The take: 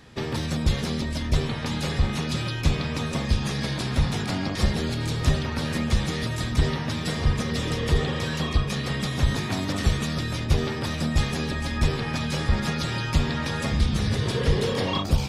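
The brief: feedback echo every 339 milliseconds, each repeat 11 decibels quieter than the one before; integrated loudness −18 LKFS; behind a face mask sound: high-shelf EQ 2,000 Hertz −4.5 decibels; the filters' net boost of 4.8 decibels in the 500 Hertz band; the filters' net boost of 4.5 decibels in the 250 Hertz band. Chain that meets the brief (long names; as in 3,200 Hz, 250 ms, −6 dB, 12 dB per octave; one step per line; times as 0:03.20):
parametric band 250 Hz +5 dB
parametric band 500 Hz +4.5 dB
high-shelf EQ 2,000 Hz −4.5 dB
repeating echo 339 ms, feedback 28%, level −11 dB
level +6 dB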